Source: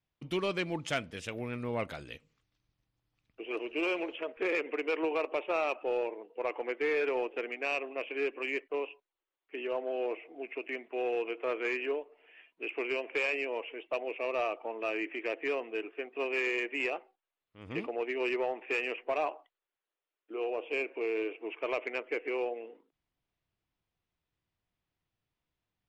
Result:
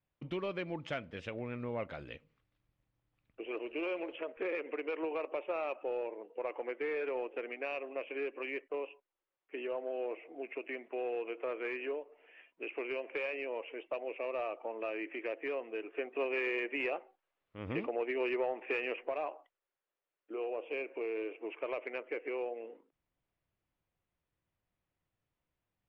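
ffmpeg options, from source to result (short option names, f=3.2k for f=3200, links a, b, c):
-filter_complex "[0:a]asettb=1/sr,asplit=3[a][b][c];[a]atrim=end=15.944[d];[b]atrim=start=15.94:end=19.09,asetpts=PTS-STARTPTS,afade=t=in:d=0.004:c=qsin,afade=t=out:st=3.146:d=0.004:c=qsin,acontrast=78[e];[c]atrim=start=19.086[f];[d][e]acrossfade=d=0.004:c1=hsin:c2=qsin[g];[g][f]acrossfade=d=0.004:c1=qsin:c2=hsin,equalizer=f=550:w=8:g=5.5,acompressor=threshold=-38dB:ratio=2,lowpass=2.7k"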